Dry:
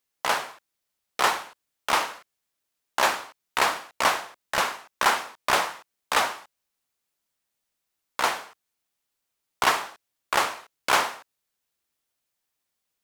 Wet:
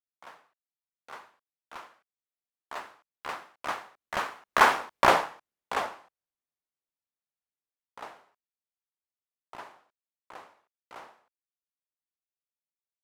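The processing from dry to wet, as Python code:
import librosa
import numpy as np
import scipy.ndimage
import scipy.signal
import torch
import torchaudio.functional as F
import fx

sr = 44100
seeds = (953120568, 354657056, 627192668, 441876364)

p1 = fx.doppler_pass(x, sr, speed_mps=31, closest_m=6.9, pass_at_s=4.84)
p2 = fx.high_shelf(p1, sr, hz=2600.0, db=-12.0)
p3 = np.sign(p2) * np.maximum(np.abs(p2) - 10.0 ** (-40.5 / 20.0), 0.0)
p4 = p2 + (p3 * librosa.db_to_amplitude(-7.5))
y = p4 * librosa.db_to_amplitude(5.0)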